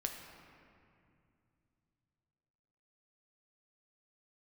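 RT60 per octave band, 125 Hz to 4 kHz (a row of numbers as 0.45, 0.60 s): 4.0, 3.4, 2.6, 2.3, 2.2, 1.5 s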